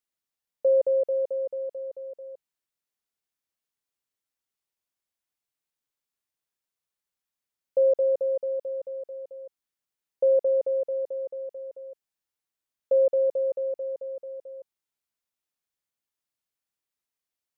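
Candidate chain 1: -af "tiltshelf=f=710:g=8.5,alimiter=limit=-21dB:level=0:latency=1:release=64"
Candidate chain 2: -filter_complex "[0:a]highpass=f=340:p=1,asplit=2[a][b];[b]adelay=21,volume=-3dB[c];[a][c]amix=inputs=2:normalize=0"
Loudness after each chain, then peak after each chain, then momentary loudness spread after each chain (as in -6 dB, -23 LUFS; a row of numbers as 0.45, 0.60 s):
-29.0, -25.5 LUFS; -21.0, -15.0 dBFS; 15, 19 LU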